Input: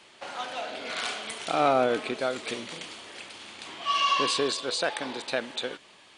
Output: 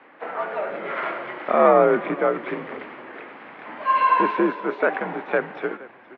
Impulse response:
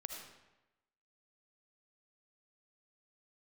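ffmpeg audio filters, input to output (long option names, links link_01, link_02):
-filter_complex "[0:a]asplit=4[link_01][link_02][link_03][link_04];[link_02]adelay=469,afreqshift=-41,volume=-20dB[link_05];[link_03]adelay=938,afreqshift=-82,volume=-27.7dB[link_06];[link_04]adelay=1407,afreqshift=-123,volume=-35.5dB[link_07];[link_01][link_05][link_06][link_07]amix=inputs=4:normalize=0,highpass=frequency=310:width_type=q:width=0.5412,highpass=frequency=310:width_type=q:width=1.307,lowpass=frequency=2100:width_type=q:width=0.5176,lowpass=frequency=2100:width_type=q:width=0.7071,lowpass=frequency=2100:width_type=q:width=1.932,afreqshift=-77,asplit=2[link_08][link_09];[link_09]asetrate=66075,aresample=44100,atempo=0.66742,volume=-16dB[link_10];[link_08][link_10]amix=inputs=2:normalize=0,volume=8dB"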